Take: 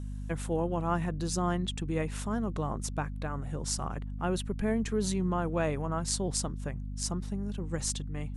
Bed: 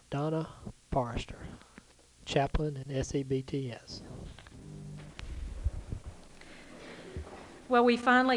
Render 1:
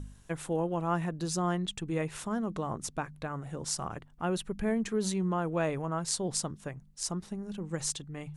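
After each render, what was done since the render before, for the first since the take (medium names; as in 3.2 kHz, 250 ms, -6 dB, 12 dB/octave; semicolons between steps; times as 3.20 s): de-hum 50 Hz, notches 5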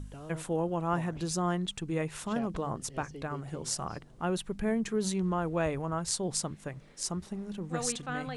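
add bed -13 dB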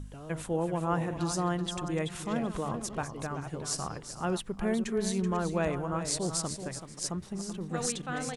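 chunks repeated in reverse 269 ms, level -11.5 dB; delay 381 ms -10 dB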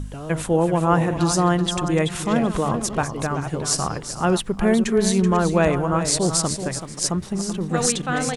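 trim +11.5 dB; peak limiter -3 dBFS, peak gain reduction 2 dB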